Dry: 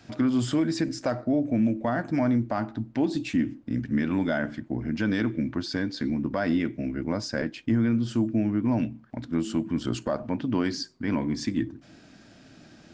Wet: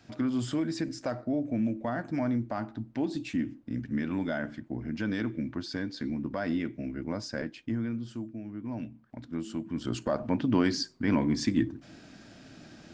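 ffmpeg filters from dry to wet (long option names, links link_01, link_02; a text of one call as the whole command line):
ffmpeg -i in.wav -af "volume=11.5dB,afade=type=out:start_time=7.35:duration=1.06:silence=0.298538,afade=type=in:start_time=8.41:duration=0.74:silence=0.398107,afade=type=in:start_time=9.66:duration=0.7:silence=0.354813" out.wav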